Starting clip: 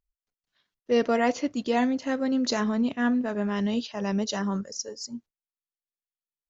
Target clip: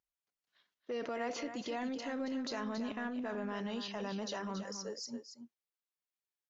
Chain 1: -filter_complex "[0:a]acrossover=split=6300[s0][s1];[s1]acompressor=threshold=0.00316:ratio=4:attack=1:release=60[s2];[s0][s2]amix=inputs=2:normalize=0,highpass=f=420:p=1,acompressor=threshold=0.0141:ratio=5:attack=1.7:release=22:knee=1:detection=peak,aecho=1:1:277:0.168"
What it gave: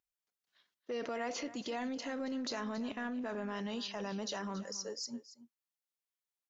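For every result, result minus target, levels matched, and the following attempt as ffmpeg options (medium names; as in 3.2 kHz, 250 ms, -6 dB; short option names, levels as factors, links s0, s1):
echo-to-direct -6.5 dB; 8 kHz band +3.0 dB
-filter_complex "[0:a]acrossover=split=6300[s0][s1];[s1]acompressor=threshold=0.00316:ratio=4:attack=1:release=60[s2];[s0][s2]amix=inputs=2:normalize=0,highpass=f=420:p=1,acompressor=threshold=0.0141:ratio=5:attack=1.7:release=22:knee=1:detection=peak,aecho=1:1:277:0.355"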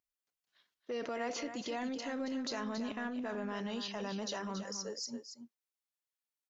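8 kHz band +3.0 dB
-filter_complex "[0:a]acrossover=split=6300[s0][s1];[s1]acompressor=threshold=0.00316:ratio=4:attack=1:release=60[s2];[s0][s2]amix=inputs=2:normalize=0,highpass=f=420:p=1,acompressor=threshold=0.0141:ratio=5:attack=1.7:release=22:knee=1:detection=peak,highshelf=f=5800:g=-7,aecho=1:1:277:0.355"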